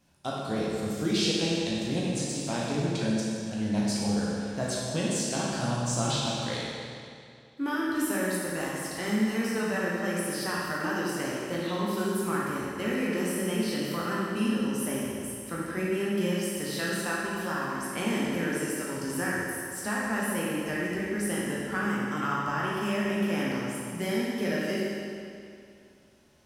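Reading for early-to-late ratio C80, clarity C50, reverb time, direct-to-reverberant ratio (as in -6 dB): -0.5 dB, -2.5 dB, 2.4 s, -6.0 dB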